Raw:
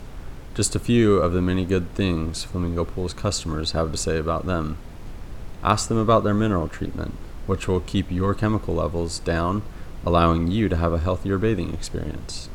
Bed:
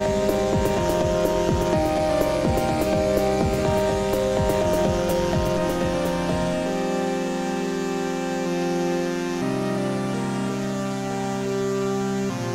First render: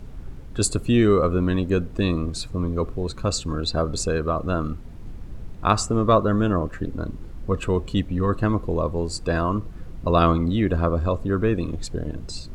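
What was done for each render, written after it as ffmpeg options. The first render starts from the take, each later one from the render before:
-af "afftdn=nr=9:nf=-37"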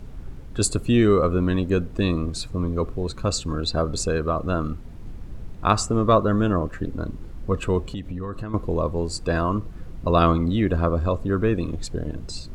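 -filter_complex "[0:a]asettb=1/sr,asplit=3[s0][s1][s2];[s0]atrim=end=7.884[s3];[s1]atrim=start=7.88:end=8.54,asetpts=PTS-STARTPTS,afade=t=in:d=0.004:c=qsin,afade=t=out:st=0.656:d=0.004:c=qsin,acompressor=threshold=0.0501:ratio=16:attack=3.2:release=140:knee=1:detection=peak[s4];[s2]atrim=start=8.536[s5];[s3][s4]acrossfade=d=0.004:c1=hsin:c2=qsin[s6];[s6][s5]acrossfade=d=0.004:c1=qsin:c2=hsin"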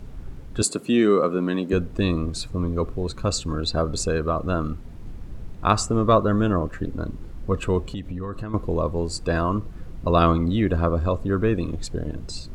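-filter_complex "[0:a]asettb=1/sr,asplit=3[s0][s1][s2];[s0]atrim=end=0.624[s3];[s1]atrim=start=0.62:end=1.73,asetpts=PTS-STARTPTS,afade=t=in:d=0.004:c=qsin,afade=t=out:st=1.106:d=0.004:c=qsin,highpass=f=180:w=0.5412,highpass=f=180:w=1.3066[s4];[s2]atrim=start=1.726[s5];[s3][s4]acrossfade=d=0.004:c1=hsin:c2=qsin[s6];[s6][s5]acrossfade=d=0.004:c1=qsin:c2=hsin"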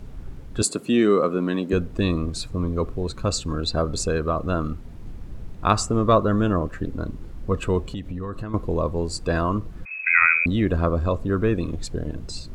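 -filter_complex "[0:a]asettb=1/sr,asplit=3[s0][s1][s2];[s0]atrim=end=9.854[s3];[s1]atrim=start=9.85:end=10.46,asetpts=PTS-STARTPTS,afade=t=in:d=0.004:c=qsin,afade=t=out:st=0.606:d=0.004:c=qsin,lowpass=f=2200:t=q:w=0.5098,lowpass=f=2200:t=q:w=0.6013,lowpass=f=2200:t=q:w=0.9,lowpass=f=2200:t=q:w=2.563,afreqshift=-2600[s4];[s2]atrim=start=10.456[s5];[s3][s4]acrossfade=d=0.004:c1=hsin:c2=qsin[s6];[s6][s5]acrossfade=d=0.004:c1=qsin:c2=hsin"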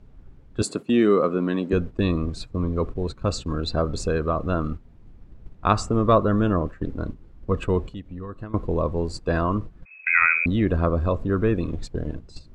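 -af "agate=range=0.282:threshold=0.0355:ratio=16:detection=peak,aemphasis=mode=reproduction:type=50kf"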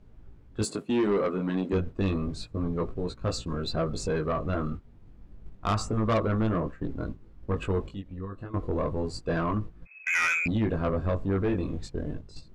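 -af "flanger=delay=17.5:depth=3.6:speed=0.3,asoftclip=type=tanh:threshold=0.1"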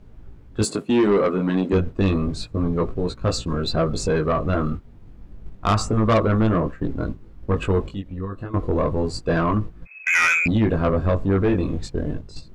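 -af "volume=2.37"

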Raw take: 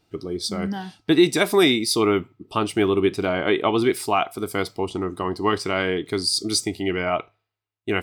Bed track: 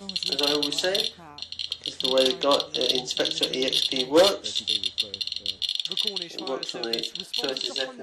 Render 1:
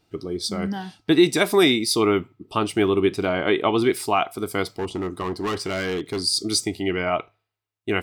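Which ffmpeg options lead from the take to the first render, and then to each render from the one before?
-filter_complex "[0:a]asettb=1/sr,asplit=3[s0][s1][s2];[s0]atrim=end=4.684[s3];[s1]atrim=start=4.68:end=6.21,asetpts=PTS-STARTPTS,afade=t=in:d=0.004:c=qsin,afade=t=out:st=1.526:d=0.004:c=qsin,asoftclip=type=hard:threshold=0.0794[s4];[s2]atrim=start=6.206[s5];[s3][s4]acrossfade=d=0.004:c1=hsin:c2=qsin[s6];[s6][s5]acrossfade=d=0.004:c1=qsin:c2=hsin"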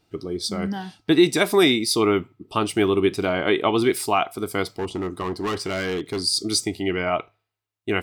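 -filter_complex "[0:a]asettb=1/sr,asplit=3[s0][s1][s2];[s0]atrim=end=2.554[s3];[s1]atrim=start=2.55:end=4.18,asetpts=PTS-STARTPTS,afade=t=in:d=0.004:c=qsin,afade=t=out:st=1.626:d=0.004:c=qsin,highshelf=f=4800:g=4[s4];[s2]atrim=start=4.176[s5];[s3][s4]acrossfade=d=0.004:c1=hsin:c2=qsin[s6];[s6][s5]acrossfade=d=0.004:c1=qsin:c2=hsin"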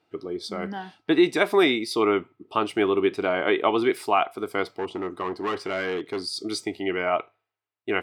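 -af "highpass=85,bass=f=250:g=-11,treble=f=4000:g=-14"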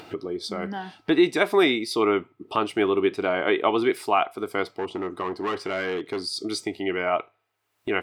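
-af "acompressor=mode=upward:threshold=0.0501:ratio=2.5"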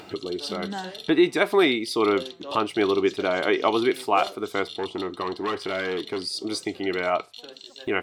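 -filter_complex "[1:a]volume=0.178[s0];[0:a][s0]amix=inputs=2:normalize=0"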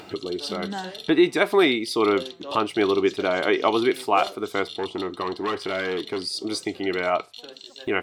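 -af "volume=1.12"

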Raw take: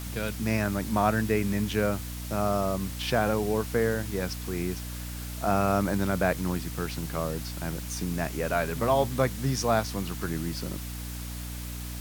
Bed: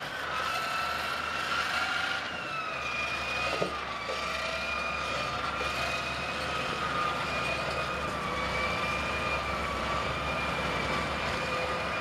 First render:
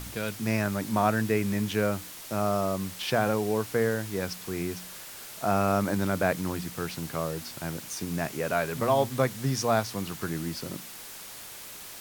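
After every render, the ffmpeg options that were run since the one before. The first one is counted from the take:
-af "bandreject=f=60:t=h:w=4,bandreject=f=120:t=h:w=4,bandreject=f=180:t=h:w=4,bandreject=f=240:t=h:w=4,bandreject=f=300:t=h:w=4"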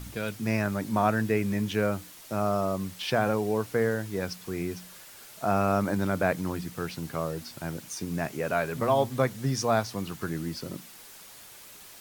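-af "afftdn=nr=6:nf=-43"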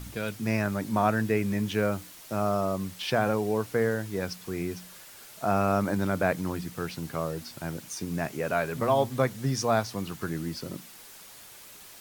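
-filter_complex "[0:a]asettb=1/sr,asplit=3[s0][s1][s2];[s0]atrim=end=1.654[s3];[s1]atrim=start=1.65:end=2.55,asetpts=PTS-STARTPTS,afade=t=in:d=0.004:c=qsin,afade=t=out:st=0.896:d=0.004:c=qsin,acrusher=bits=7:mix=0:aa=0.5[s4];[s2]atrim=start=2.546[s5];[s3][s4]acrossfade=d=0.004:c1=hsin:c2=qsin[s6];[s6][s5]acrossfade=d=0.004:c1=qsin:c2=hsin"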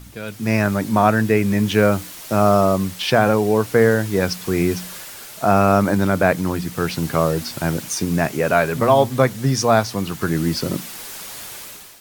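-af "dynaudnorm=f=130:g=7:m=5.31"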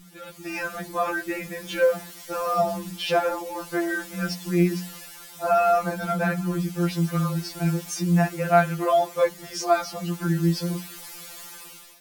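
-af "flanger=delay=4:depth=9.6:regen=-88:speed=0.86:shape=sinusoidal,afftfilt=real='re*2.83*eq(mod(b,8),0)':imag='im*2.83*eq(mod(b,8),0)':win_size=2048:overlap=0.75"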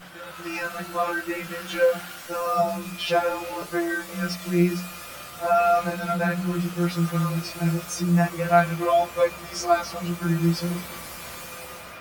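-filter_complex "[1:a]volume=0.335[s0];[0:a][s0]amix=inputs=2:normalize=0"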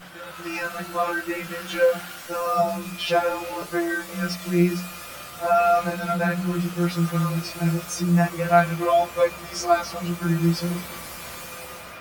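-af "volume=1.12"

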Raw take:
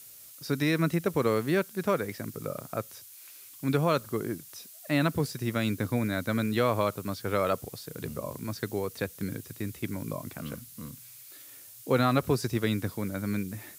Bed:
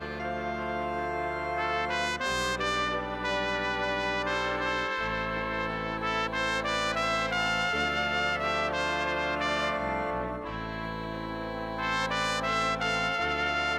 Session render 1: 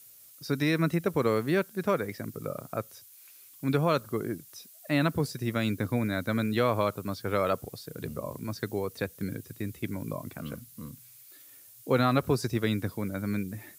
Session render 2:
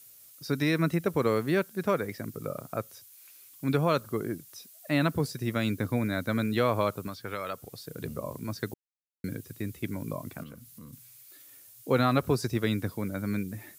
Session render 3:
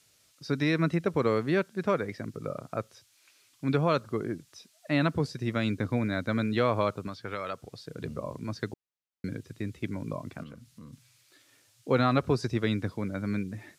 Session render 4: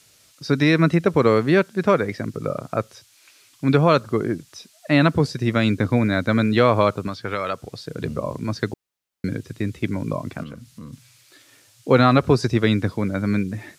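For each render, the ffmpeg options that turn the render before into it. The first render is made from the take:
-af "afftdn=nr=6:nf=-50"
-filter_complex "[0:a]asettb=1/sr,asplit=3[s0][s1][s2];[s0]atrim=end=7.074[s3];[s1]atrim=start=7.07:end=7.78,asetpts=PTS-STARTPTS,afade=t=in:d=0.004:c=qsin,afade=t=out:st=0.706:d=0.004:c=qsin,acrossover=split=1100|4200[s4][s5][s6];[s4]acompressor=threshold=0.0141:ratio=4[s7];[s5]acompressor=threshold=0.0158:ratio=4[s8];[s6]acompressor=threshold=0.00282:ratio=4[s9];[s7][s8][s9]amix=inputs=3:normalize=0[s10];[s2]atrim=start=7.776[s11];[s3][s10]acrossfade=d=0.004:c1=hsin:c2=qsin[s12];[s12][s11]acrossfade=d=0.004:c1=qsin:c2=hsin,asettb=1/sr,asplit=3[s13][s14][s15];[s13]atrim=end=10.434[s16];[s14]atrim=start=10.43:end=10.93,asetpts=PTS-STARTPTS,afade=t=in:d=0.004:c=qsin,afade=t=out:st=0.496:d=0.004:c=qsin,acompressor=threshold=0.00562:ratio=2.5:attack=3.2:release=140:knee=1:detection=peak[s17];[s15]atrim=start=10.926[s18];[s16][s17]acrossfade=d=0.004:c1=hsin:c2=qsin[s19];[s19][s18]acrossfade=d=0.004:c1=qsin:c2=hsin,asplit=3[s20][s21][s22];[s20]atrim=end=8.74,asetpts=PTS-STARTPTS,afade=t=out:st=8.736:d=0.004:c=hsin[s23];[s21]atrim=start=8.74:end=9.24,asetpts=PTS-STARTPTS,volume=0[s24];[s22]atrim=start=9.24,asetpts=PTS-STARTPTS,afade=t=in:d=0.004:c=hsin[s25];[s23][s24][s25]concat=n=3:v=0:a=1"
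-af "lowpass=5600"
-af "volume=2.99,alimiter=limit=0.794:level=0:latency=1"

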